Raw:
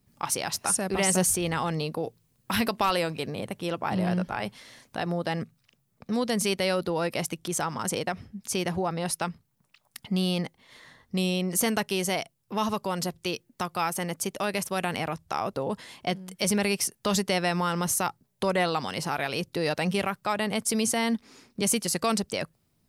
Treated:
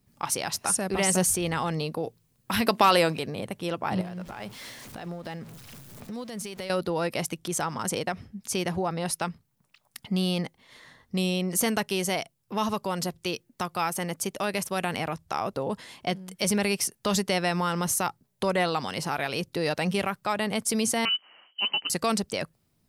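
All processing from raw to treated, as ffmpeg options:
ffmpeg -i in.wav -filter_complex "[0:a]asettb=1/sr,asplit=3[link_01][link_02][link_03];[link_01]atrim=end=2.684[link_04];[link_02]atrim=start=2.68:end=3.19,asetpts=PTS-STARTPTS,afade=type=in:duration=0.004:curve=qsin,afade=type=out:start_time=0.506:duration=0.004:curve=qsin,highpass=140,acontrast=45[link_05];[link_03]atrim=start=3.186[link_06];[link_04][link_05]acrossfade=duration=0.004:curve1=hsin:curve2=qsin[link_07];[link_07][link_06]acrossfade=duration=0.004:curve1=qsin:curve2=hsin,asettb=1/sr,asplit=3[link_08][link_09][link_10];[link_08]atrim=end=4.014[link_11];[link_09]atrim=start=4.01:end=6.7,asetpts=PTS-STARTPTS,afade=type=in:duration=0.004:curve=qsin,afade=type=out:start_time=2.686:duration=0.004:curve=qsin,aeval=exprs='val(0)+0.5*0.0112*sgn(val(0))':channel_layout=same,acompressor=threshold=-32dB:ratio=6:attack=3.2:release=140:knee=1:detection=peak,tremolo=f=4.6:d=0.3[link_12];[link_10]atrim=start=6.696[link_13];[link_11][link_12]acrossfade=duration=0.004:curve1=hsin:curve2=qsin[link_14];[link_14][link_13]acrossfade=duration=0.004:curve1=qsin:curve2=hsin,asettb=1/sr,asplit=3[link_15][link_16][link_17];[link_15]atrim=end=21.054[link_18];[link_16]atrim=start=21.05:end=21.9,asetpts=PTS-STARTPTS,afade=type=in:duration=0.004:curve=qsin,afade=type=out:start_time=0.846:duration=0.004:curve=qsin,lowpass=frequency=2700:width_type=q:width=0.5098,lowpass=frequency=2700:width_type=q:width=0.6013,lowpass=frequency=2700:width_type=q:width=0.9,lowpass=frequency=2700:width_type=q:width=2.563,afreqshift=-3200,lowshelf=frequency=140:width_type=q:width=1.5:gain=-14[link_19];[link_17]atrim=start=21.896[link_20];[link_18][link_19]acrossfade=duration=0.004:curve1=hsin:curve2=qsin[link_21];[link_21][link_20]acrossfade=duration=0.004:curve1=qsin:curve2=hsin" out.wav

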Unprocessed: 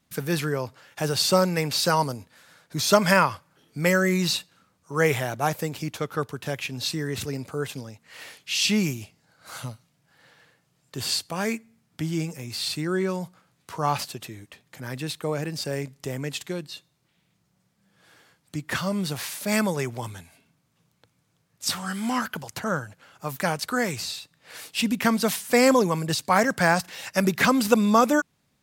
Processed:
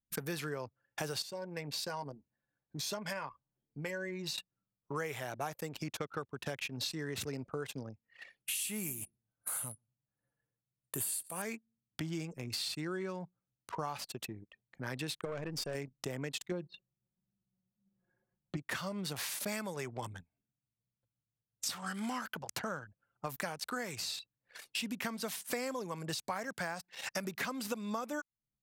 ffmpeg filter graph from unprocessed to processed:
ffmpeg -i in.wav -filter_complex "[0:a]asettb=1/sr,asplit=3[link_01][link_02][link_03];[link_01]atrim=end=1.224[link_04];[link_02]atrim=start=1.22:end=4.38,asetpts=PTS-STARTPTS,afade=type=in:duration=0.004:curve=qsin,afade=type=out:start_time=3.156:duration=0.004:curve=qsin,acompressor=threshold=-53dB:ratio=1.5:attack=3.2:release=140:knee=1:detection=peak,asuperstop=centerf=1300:order=4:qfactor=7.4,asplit=2[link_05][link_06];[link_06]adelay=14,volume=-9dB[link_07];[link_05][link_07]amix=inputs=2:normalize=0,atrim=end_sample=139356[link_08];[link_03]atrim=start=4.376[link_09];[link_04][link_08]acrossfade=duration=0.004:curve1=hsin:curve2=qsin[link_10];[link_10][link_09]acrossfade=duration=0.004:curve1=qsin:curve2=hsin,asettb=1/sr,asplit=3[link_11][link_12][link_13];[link_11]atrim=end=8.404[link_14];[link_12]atrim=start=8.4:end=11.42,asetpts=PTS-STARTPTS,afade=type=in:duration=0.004:curve=qsin,afade=type=out:start_time=3.016:duration=0.004:curve=qsin,highshelf=frequency=7300:width_type=q:width=3:gain=13,aecho=1:1:120|240:0.0841|0.0227,atrim=end_sample=133182[link_15];[link_13]atrim=start=11.416[link_16];[link_14][link_15]acrossfade=duration=0.004:curve1=hsin:curve2=qsin[link_17];[link_17][link_16]acrossfade=duration=0.004:curve1=qsin:curve2=hsin,asettb=1/sr,asplit=3[link_18][link_19][link_20];[link_18]atrim=end=15.254[link_21];[link_19]atrim=start=15.25:end=15.75,asetpts=PTS-STARTPTS,afade=type=in:duration=0.004:curve=qsin,afade=type=out:start_time=0.496:duration=0.004:curve=qsin,bandreject=frequency=4000:width=9.1,aeval=exprs='(tanh(22.4*val(0)+0.4)-tanh(0.4))/22.4':channel_layout=same[link_22];[link_20]atrim=start=15.746[link_23];[link_21][link_22]acrossfade=duration=0.004:curve1=hsin:curve2=qsin[link_24];[link_24][link_23]acrossfade=duration=0.004:curve1=qsin:curve2=hsin,asettb=1/sr,asplit=3[link_25][link_26][link_27];[link_25]atrim=end=16.514[link_28];[link_26]atrim=start=16.51:end=18.57,asetpts=PTS-STARTPTS,afade=type=in:duration=0.004:curve=qsin,afade=type=out:start_time=2.056:duration=0.004:curve=qsin,lowpass=frequency=1200:poles=1,aecho=1:1:5.5:0.73,atrim=end_sample=90846,acontrast=29[link_29];[link_27]atrim=start=18.566[link_30];[link_28][link_29]acrossfade=duration=0.004:curve1=hsin:curve2=qsin[link_31];[link_31][link_30]acrossfade=duration=0.004:curve1=qsin:curve2=hsin,anlmdn=1.58,lowshelf=frequency=260:gain=-6.5,acompressor=threshold=-35dB:ratio=10" out.wav

